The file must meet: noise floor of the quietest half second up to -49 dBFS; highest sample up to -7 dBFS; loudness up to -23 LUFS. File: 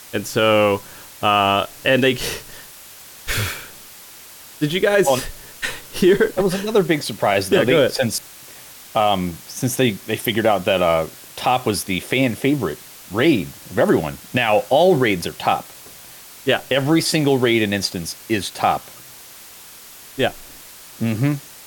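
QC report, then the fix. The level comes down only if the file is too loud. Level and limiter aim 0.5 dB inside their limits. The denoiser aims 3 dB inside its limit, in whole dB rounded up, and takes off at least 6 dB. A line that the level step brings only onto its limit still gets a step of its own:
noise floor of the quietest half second -41 dBFS: fail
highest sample -5.0 dBFS: fail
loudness -19.0 LUFS: fail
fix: noise reduction 7 dB, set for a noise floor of -41 dBFS; trim -4.5 dB

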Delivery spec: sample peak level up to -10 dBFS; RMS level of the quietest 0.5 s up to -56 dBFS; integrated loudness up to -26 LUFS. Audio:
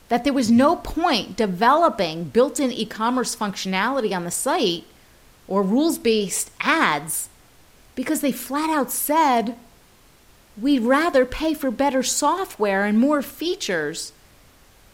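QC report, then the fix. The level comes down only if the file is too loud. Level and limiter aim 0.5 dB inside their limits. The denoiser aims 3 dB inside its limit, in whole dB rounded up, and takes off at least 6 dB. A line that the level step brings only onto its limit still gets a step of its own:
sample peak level -5.5 dBFS: fail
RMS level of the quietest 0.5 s -53 dBFS: fail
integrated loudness -21.0 LUFS: fail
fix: trim -5.5 dB

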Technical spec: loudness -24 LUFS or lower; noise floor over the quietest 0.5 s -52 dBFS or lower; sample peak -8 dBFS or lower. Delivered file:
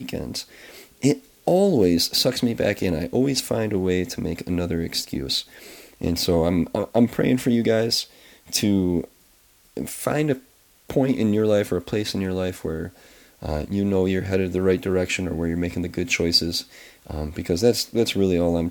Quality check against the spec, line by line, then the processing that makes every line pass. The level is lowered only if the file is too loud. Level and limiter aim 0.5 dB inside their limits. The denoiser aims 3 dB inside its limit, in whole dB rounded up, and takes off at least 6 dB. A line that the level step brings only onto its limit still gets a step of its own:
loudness -22.5 LUFS: fail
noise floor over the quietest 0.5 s -57 dBFS: pass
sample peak -5.0 dBFS: fail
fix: trim -2 dB; peak limiter -8.5 dBFS

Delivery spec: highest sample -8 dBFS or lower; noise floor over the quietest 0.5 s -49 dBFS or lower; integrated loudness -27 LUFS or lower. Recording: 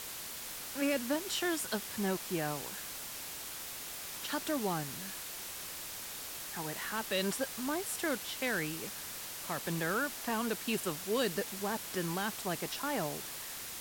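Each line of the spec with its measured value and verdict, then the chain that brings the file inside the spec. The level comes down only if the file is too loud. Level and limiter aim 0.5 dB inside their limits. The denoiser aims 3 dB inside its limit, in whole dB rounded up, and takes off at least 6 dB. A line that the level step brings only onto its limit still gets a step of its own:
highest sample -19.0 dBFS: pass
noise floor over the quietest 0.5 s -44 dBFS: fail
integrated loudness -36.0 LUFS: pass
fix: noise reduction 8 dB, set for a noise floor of -44 dBFS

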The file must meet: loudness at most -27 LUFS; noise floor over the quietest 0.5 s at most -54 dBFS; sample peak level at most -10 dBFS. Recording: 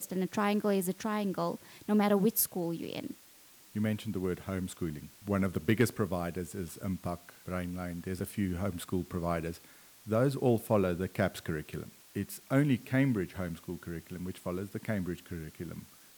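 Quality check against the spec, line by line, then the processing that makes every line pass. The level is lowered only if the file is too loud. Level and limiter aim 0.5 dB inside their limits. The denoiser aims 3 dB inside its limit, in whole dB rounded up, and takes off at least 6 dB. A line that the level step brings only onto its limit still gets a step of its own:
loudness -33.5 LUFS: pass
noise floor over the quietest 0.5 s -58 dBFS: pass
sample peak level -14.0 dBFS: pass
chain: none needed

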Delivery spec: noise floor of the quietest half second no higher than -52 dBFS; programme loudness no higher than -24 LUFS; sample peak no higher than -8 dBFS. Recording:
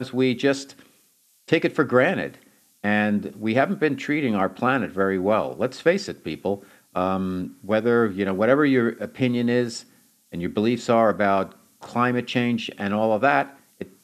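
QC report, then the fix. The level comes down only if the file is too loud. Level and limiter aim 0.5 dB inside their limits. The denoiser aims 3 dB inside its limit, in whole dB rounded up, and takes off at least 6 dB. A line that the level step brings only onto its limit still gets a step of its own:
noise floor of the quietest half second -61 dBFS: pass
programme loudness -23.0 LUFS: fail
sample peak -4.5 dBFS: fail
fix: trim -1.5 dB; peak limiter -8.5 dBFS

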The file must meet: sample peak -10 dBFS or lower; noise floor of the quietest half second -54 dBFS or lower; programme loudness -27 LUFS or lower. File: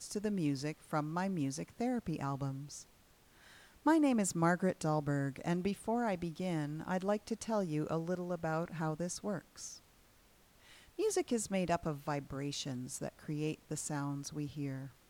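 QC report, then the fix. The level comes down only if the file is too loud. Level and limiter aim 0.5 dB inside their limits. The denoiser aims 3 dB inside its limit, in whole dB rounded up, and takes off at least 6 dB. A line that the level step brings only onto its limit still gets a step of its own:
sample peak -18.5 dBFS: pass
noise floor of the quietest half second -66 dBFS: pass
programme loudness -36.5 LUFS: pass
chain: none needed

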